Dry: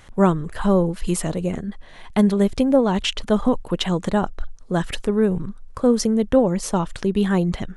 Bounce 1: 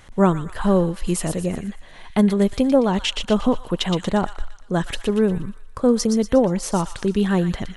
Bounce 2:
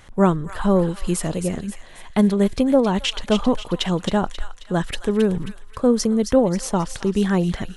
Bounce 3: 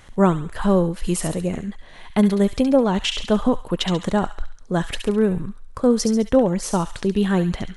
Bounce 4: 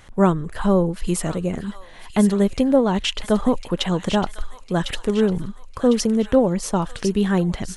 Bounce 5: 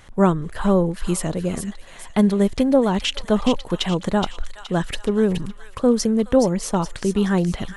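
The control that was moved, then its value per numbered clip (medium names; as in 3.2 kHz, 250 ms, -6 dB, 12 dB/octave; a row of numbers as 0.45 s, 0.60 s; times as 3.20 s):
feedback echo behind a high-pass, time: 119 ms, 268 ms, 69 ms, 1053 ms, 421 ms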